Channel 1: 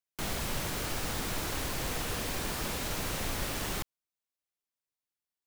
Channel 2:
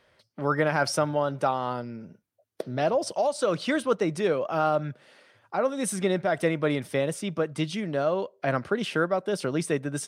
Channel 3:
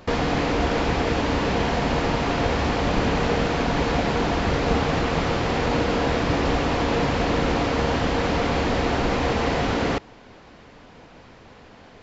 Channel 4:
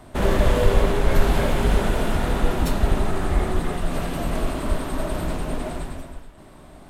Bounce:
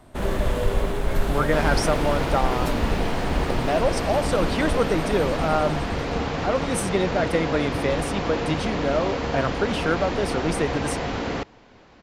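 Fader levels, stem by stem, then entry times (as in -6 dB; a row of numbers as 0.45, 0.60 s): -17.0, +1.5, -4.5, -5.0 dB; 0.00, 0.90, 1.45, 0.00 s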